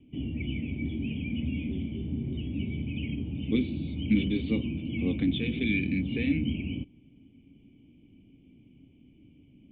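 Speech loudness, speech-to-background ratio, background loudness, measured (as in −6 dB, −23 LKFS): −30.5 LKFS, 3.0 dB, −33.5 LKFS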